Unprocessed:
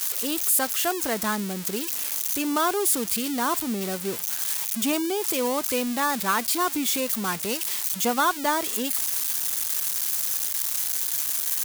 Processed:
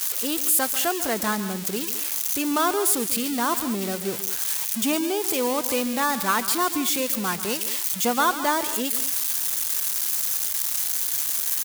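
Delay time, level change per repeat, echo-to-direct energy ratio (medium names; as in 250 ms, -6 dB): 141 ms, no regular repeats, -11.5 dB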